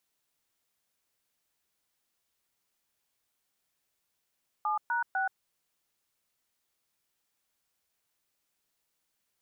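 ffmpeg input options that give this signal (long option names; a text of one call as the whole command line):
ffmpeg -f lavfi -i "aevalsrc='0.0335*clip(min(mod(t,0.25),0.127-mod(t,0.25))/0.002,0,1)*(eq(floor(t/0.25),0)*(sin(2*PI*852*mod(t,0.25))+sin(2*PI*1209*mod(t,0.25)))+eq(floor(t/0.25),1)*(sin(2*PI*941*mod(t,0.25))+sin(2*PI*1477*mod(t,0.25)))+eq(floor(t/0.25),2)*(sin(2*PI*770*mod(t,0.25))+sin(2*PI*1477*mod(t,0.25))))':duration=0.75:sample_rate=44100" out.wav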